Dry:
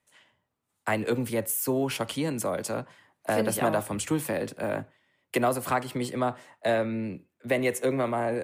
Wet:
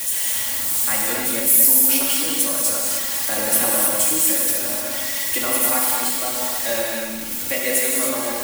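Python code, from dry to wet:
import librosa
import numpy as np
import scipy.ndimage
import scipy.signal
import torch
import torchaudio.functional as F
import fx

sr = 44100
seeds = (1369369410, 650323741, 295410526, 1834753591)

p1 = x + 0.5 * 10.0 ** (-26.5 / 20.0) * np.diff(np.sign(x), prepend=np.sign(x[:1]))
p2 = librosa.effects.preemphasis(p1, coef=0.9, zi=[0.0])
p3 = fx.backlash(p2, sr, play_db=-36.0)
p4 = p2 + (p3 * 10.0 ** (-11.0 / 20.0))
p5 = fx.high_shelf(p4, sr, hz=6600.0, db=-9.0)
p6 = p5 + 0.86 * np.pad(p5, (int(3.6 * sr / 1000.0), 0))[:len(p5)]
p7 = p6 + fx.echo_single(p6, sr, ms=201, db=-9.0, dry=0)
p8 = fx.rev_gated(p7, sr, seeds[0], gate_ms=330, shape='flat', drr_db=-3.5)
y = p8 * 10.0 ** (9.0 / 20.0)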